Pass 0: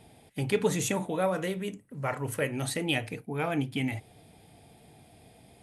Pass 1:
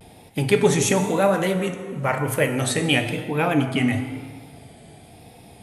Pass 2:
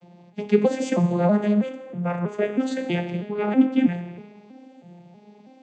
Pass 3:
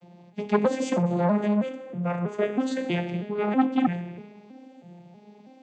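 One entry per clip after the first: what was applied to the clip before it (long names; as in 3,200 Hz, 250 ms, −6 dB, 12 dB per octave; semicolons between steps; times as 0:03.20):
dense smooth reverb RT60 1.9 s, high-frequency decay 0.65×, DRR 6.5 dB; pitch vibrato 0.98 Hz 77 cents; level +8.5 dB
vocoder with an arpeggio as carrier minor triad, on F3, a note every 321 ms
saturating transformer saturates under 720 Hz; level −1 dB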